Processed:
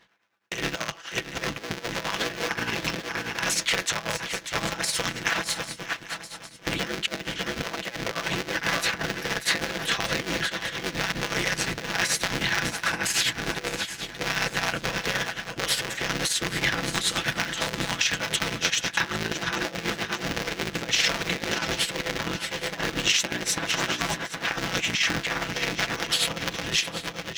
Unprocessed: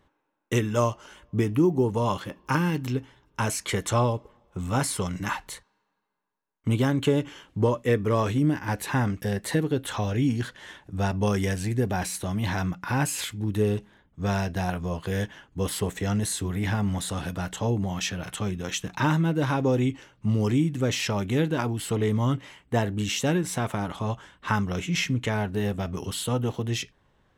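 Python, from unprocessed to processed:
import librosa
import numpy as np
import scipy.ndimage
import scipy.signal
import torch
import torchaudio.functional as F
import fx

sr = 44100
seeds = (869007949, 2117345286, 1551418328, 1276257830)

p1 = fx.cycle_switch(x, sr, every=3, mode='inverted')
p2 = fx.low_shelf(p1, sr, hz=310.0, db=-6.0)
p3 = p2 + fx.echo_swing(p2, sr, ms=799, ratio=3, feedback_pct=34, wet_db=-10.0, dry=0)
p4 = fx.tremolo_shape(p3, sr, shape='triangle', hz=9.5, depth_pct=80)
p5 = fx.highpass(p4, sr, hz=90.0, slope=6)
p6 = p5 + 0.41 * np.pad(p5, (int(6.0 * sr / 1000.0), 0))[:len(p5)]
p7 = 10.0 ** (-20.5 / 20.0) * np.tanh(p6 / 10.0 ** (-20.5 / 20.0))
p8 = p6 + (p7 * 10.0 ** (-9.5 / 20.0))
p9 = fx.over_compress(p8, sr, threshold_db=-30.0, ratio=-0.5)
y = fx.band_shelf(p9, sr, hz=3100.0, db=9.5, octaves=2.4)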